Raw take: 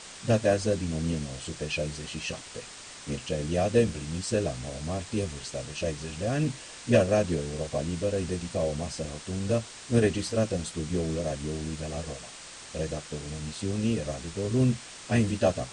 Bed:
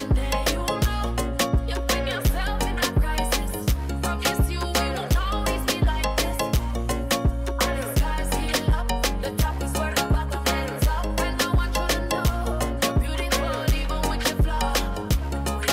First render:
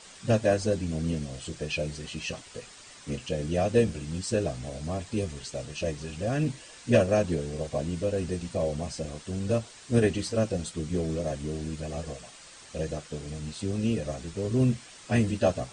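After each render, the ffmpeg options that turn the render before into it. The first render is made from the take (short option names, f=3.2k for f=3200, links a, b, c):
-af "afftdn=nr=7:nf=-45"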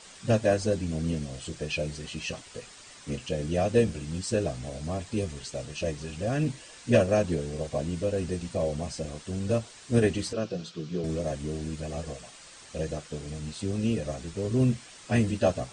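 -filter_complex "[0:a]asettb=1/sr,asplit=3[a][b][c];[a]atrim=end=10.334[d];[b]atrim=start=10.33:end=11.04,asetpts=PTS-STARTPTS,afade=t=in:d=0.004:c=qsin,afade=t=out:st=0.706:d=0.004:c=qsin,highpass=f=140:w=0.5412,highpass=f=140:w=1.3066,equalizer=f=250:t=q:w=4:g=-9,equalizer=f=570:t=q:w=4:g=-5,equalizer=f=850:t=q:w=4:g=-8,equalizer=f=2k:t=q:w=4:g=-8,lowpass=f=5.5k:w=0.5412,lowpass=f=5.5k:w=1.3066[e];[c]atrim=start=11.036[f];[d][e]acrossfade=d=0.004:c1=hsin:c2=qsin[g];[g][f]acrossfade=d=0.004:c1=qsin:c2=hsin"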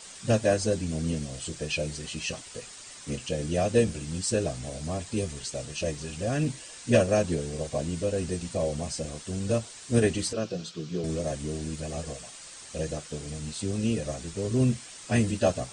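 -af "highshelf=f=6.9k:g=11"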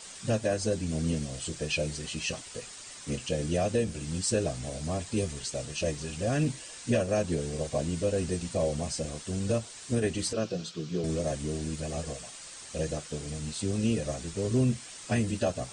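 -af "alimiter=limit=-17dB:level=0:latency=1:release=276"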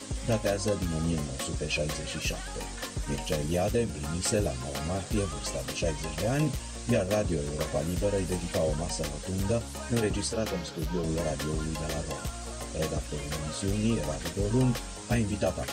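-filter_complex "[1:a]volume=-14dB[a];[0:a][a]amix=inputs=2:normalize=0"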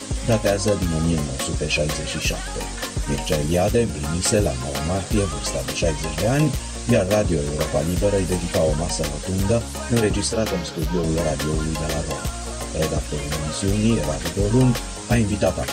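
-af "volume=8.5dB"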